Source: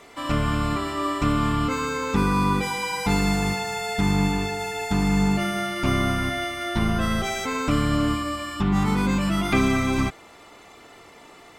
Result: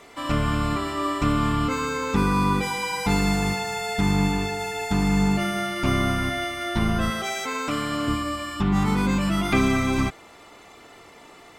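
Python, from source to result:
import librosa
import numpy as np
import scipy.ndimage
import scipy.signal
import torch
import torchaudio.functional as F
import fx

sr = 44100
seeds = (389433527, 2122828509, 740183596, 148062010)

y = fx.highpass(x, sr, hz=430.0, slope=6, at=(7.1, 8.08))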